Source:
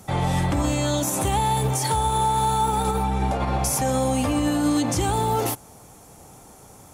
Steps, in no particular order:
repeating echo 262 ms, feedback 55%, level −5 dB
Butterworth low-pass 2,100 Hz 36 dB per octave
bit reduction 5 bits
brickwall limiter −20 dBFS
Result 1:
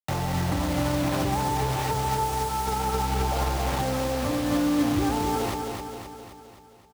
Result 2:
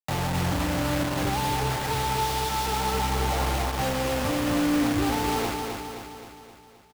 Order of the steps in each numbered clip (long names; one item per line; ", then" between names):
Butterworth low-pass, then bit reduction, then brickwall limiter, then repeating echo
brickwall limiter, then Butterworth low-pass, then bit reduction, then repeating echo